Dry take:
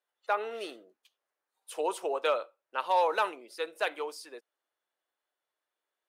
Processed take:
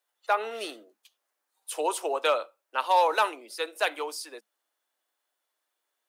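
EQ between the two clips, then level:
Chebyshev high-pass with heavy ripple 210 Hz, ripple 3 dB
high-shelf EQ 3,200 Hz +9.5 dB
+4.0 dB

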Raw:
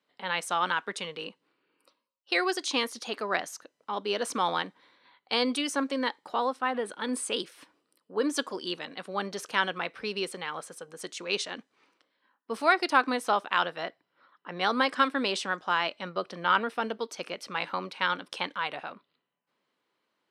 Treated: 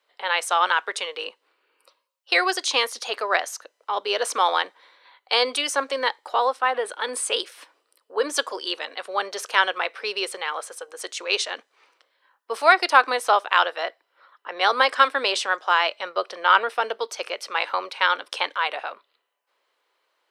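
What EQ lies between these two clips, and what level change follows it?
high-pass filter 440 Hz 24 dB per octave
+7.5 dB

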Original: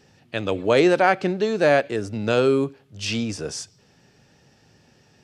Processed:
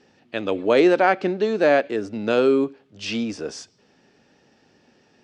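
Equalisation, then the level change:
high-frequency loss of the air 87 metres
low shelf with overshoot 180 Hz −8.5 dB, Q 1.5
0.0 dB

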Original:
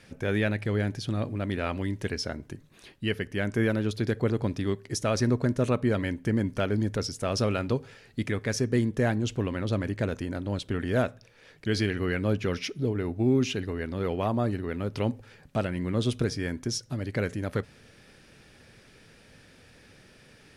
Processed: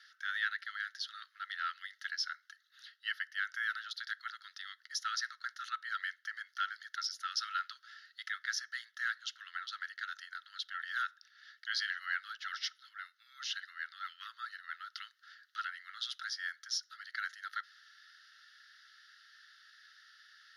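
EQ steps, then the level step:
Chebyshev high-pass with heavy ripple 1,300 Hz, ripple 3 dB
high-shelf EQ 7,800 Hz −10.5 dB
phaser with its sweep stopped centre 2,400 Hz, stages 6
+3.5 dB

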